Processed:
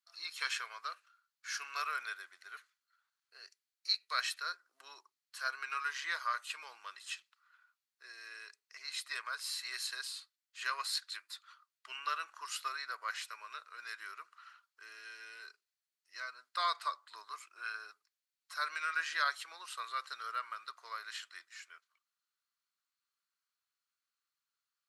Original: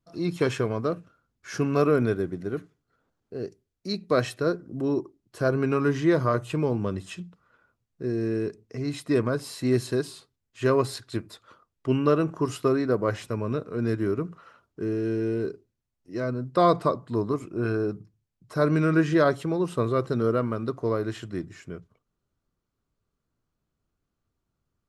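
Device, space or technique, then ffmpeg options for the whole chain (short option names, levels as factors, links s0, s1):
headphones lying on a table: -af "highpass=f=1300:w=0.5412,highpass=f=1300:w=1.3066,equalizer=f=4300:t=o:w=0.22:g=6.5,volume=0.841"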